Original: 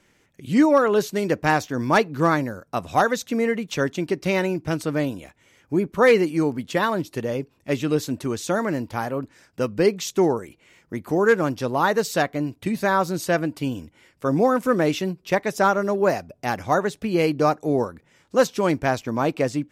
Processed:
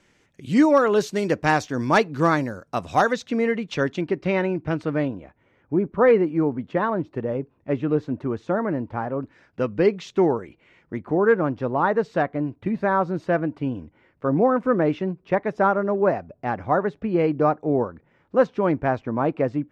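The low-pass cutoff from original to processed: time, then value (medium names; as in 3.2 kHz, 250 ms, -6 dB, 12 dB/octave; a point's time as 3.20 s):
8.1 kHz
from 3.13 s 4.2 kHz
from 4.01 s 2.4 kHz
from 5.08 s 1.4 kHz
from 9.23 s 2.7 kHz
from 11.01 s 1.6 kHz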